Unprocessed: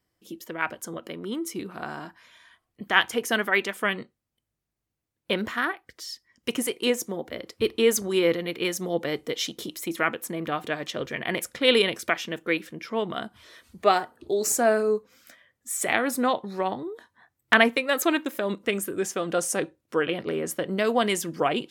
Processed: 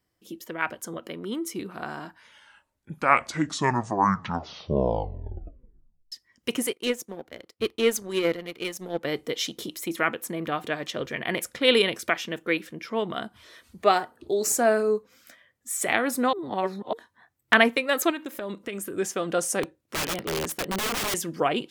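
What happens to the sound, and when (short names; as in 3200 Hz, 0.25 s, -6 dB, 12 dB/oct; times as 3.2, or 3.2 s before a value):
2.03 tape stop 4.09 s
6.73–9.04 power-law curve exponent 1.4
16.33–16.93 reverse
18.1–18.98 compressor 4:1, threshold -30 dBFS
19.63–21.14 wrapped overs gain 23 dB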